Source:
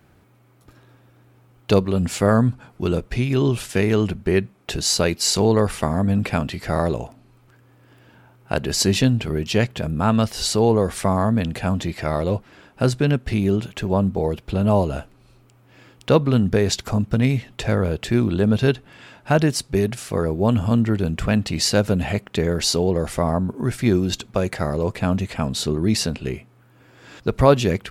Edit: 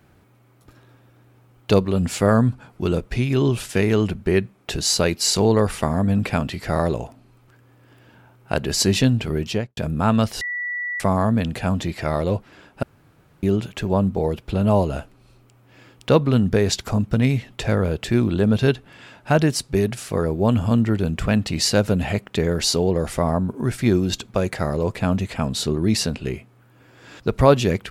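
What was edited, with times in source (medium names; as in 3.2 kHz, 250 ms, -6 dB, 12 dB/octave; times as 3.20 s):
9.43–9.77 s: studio fade out
10.41–11.00 s: bleep 1.95 kHz -24 dBFS
12.83–13.43 s: room tone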